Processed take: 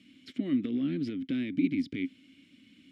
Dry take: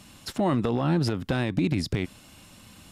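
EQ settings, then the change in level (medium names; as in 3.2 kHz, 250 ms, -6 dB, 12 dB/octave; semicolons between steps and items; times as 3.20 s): vowel filter i; +4.5 dB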